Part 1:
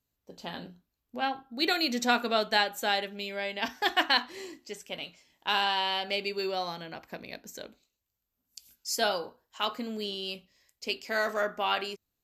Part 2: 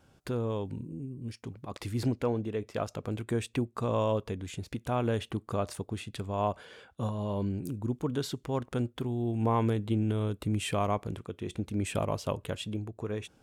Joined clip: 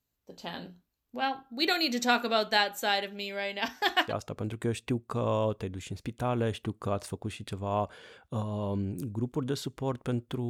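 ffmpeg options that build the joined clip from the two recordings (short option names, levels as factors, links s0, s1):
-filter_complex "[0:a]apad=whole_dur=10.49,atrim=end=10.49,atrim=end=4.13,asetpts=PTS-STARTPTS[s0];[1:a]atrim=start=2.66:end=9.16,asetpts=PTS-STARTPTS[s1];[s0][s1]acrossfade=d=0.14:c1=tri:c2=tri"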